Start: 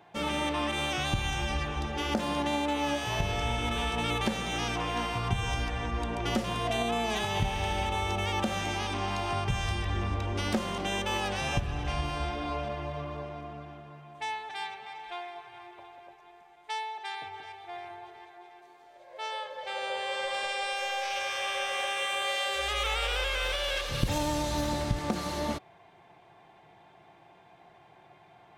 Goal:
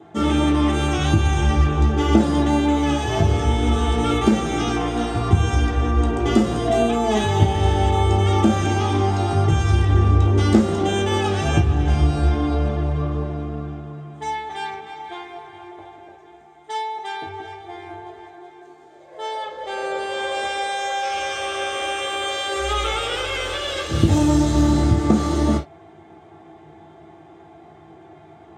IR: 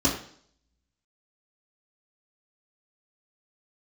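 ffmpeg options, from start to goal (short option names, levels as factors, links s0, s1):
-filter_complex "[1:a]atrim=start_sample=2205,atrim=end_sample=3969,asetrate=52920,aresample=44100[s0];[0:a][s0]afir=irnorm=-1:irlink=0,volume=0.596"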